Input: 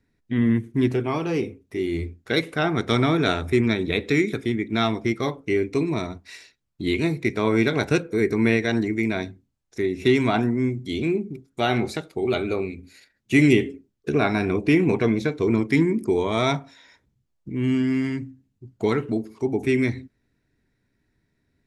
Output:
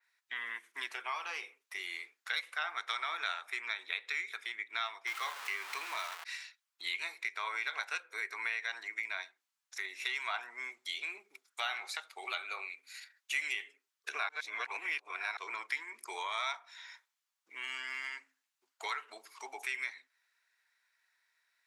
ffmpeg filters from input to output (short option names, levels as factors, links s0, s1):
-filter_complex "[0:a]asettb=1/sr,asplit=3[s0][s1][s2];[s0]atrim=end=5.074[s3];[s1]atrim=start=5.07:end=6.24,asetpts=PTS-STARTPTS,afade=t=in:d=0.004:c=qsin,afade=t=out:st=1.166:d=0.004:c=qsin,aeval=exprs='val(0)+0.5*0.0422*sgn(val(0))':c=same[s4];[s2]atrim=start=6.236[s5];[s3][s4]acrossfade=d=0.004:c1=hsin:c2=qsin[s6];[s6][s5]acrossfade=d=0.004:c1=qsin:c2=hsin,asplit=3[s7][s8][s9];[s7]atrim=end=14.292[s10];[s8]atrim=start=14.288:end=15.372,asetpts=PTS-STARTPTS,areverse[s11];[s9]atrim=start=15.368[s12];[s10][s11]acrossfade=d=0.004:c1=hsin:c2=hsin[s13];[s13][s12]acrossfade=d=0.004:c1=hsin:c2=hsin,highpass=f=1000:w=0.5412,highpass=f=1000:w=1.3066,acompressor=threshold=0.00891:ratio=2.5,adynamicequalizer=threshold=0.002:dfrequency=4200:dqfactor=0.7:tfrequency=4200:tqfactor=0.7:attack=5:release=100:ratio=0.375:range=2.5:mode=cutabove:tftype=highshelf,volume=1.41"